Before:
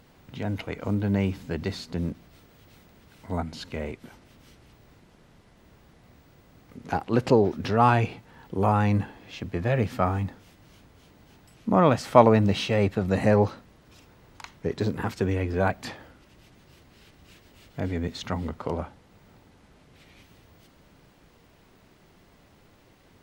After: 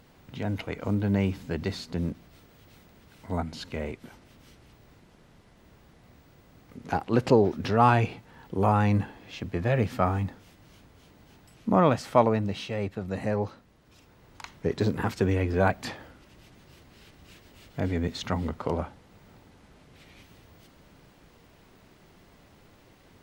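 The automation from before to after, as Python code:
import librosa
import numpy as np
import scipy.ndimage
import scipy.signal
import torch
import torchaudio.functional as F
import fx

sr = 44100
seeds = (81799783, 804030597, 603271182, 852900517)

y = fx.gain(x, sr, db=fx.line((11.71, -0.5), (12.52, -8.0), (13.44, -8.0), (14.56, 1.0)))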